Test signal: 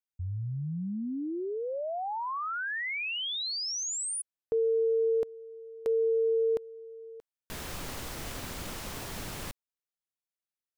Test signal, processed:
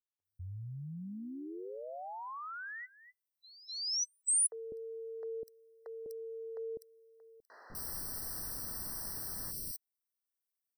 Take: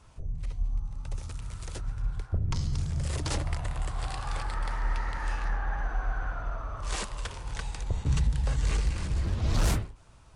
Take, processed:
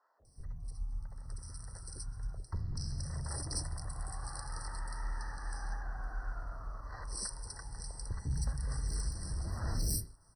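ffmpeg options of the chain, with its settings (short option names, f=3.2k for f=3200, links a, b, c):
-filter_complex "[0:a]acrossover=split=510|2800[a][b][c];[a]adelay=200[d];[c]adelay=250[e];[d][b][e]amix=inputs=3:normalize=0,aexciter=amount=6.4:drive=2.2:freq=5.3k,afftfilt=real='re*eq(mod(floor(b*sr/1024/2000),2),0)':imag='im*eq(mod(floor(b*sr/1024/2000),2),0)':win_size=1024:overlap=0.75,volume=-9dB"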